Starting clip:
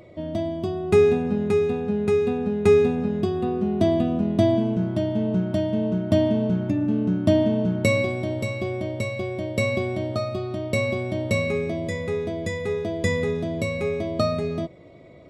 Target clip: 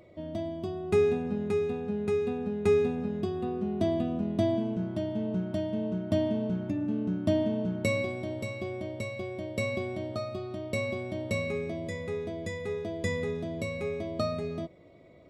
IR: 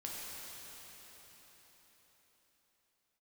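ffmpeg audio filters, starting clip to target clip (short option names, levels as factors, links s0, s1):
-af "equalizer=f=130:w=5.4:g=-4.5,volume=0.422"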